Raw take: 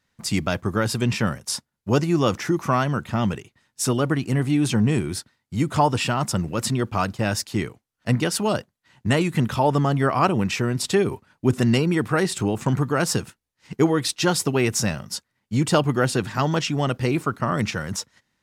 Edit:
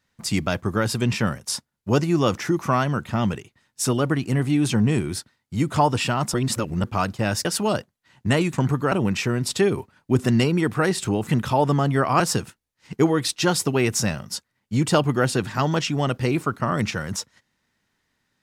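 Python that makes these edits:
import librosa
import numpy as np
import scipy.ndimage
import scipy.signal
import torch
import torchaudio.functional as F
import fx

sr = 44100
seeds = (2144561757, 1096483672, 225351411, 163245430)

y = fx.edit(x, sr, fx.reverse_span(start_s=6.34, length_s=0.5),
    fx.cut(start_s=7.45, length_s=0.8),
    fx.swap(start_s=9.33, length_s=0.93, other_s=12.61, other_length_s=0.39), tone=tone)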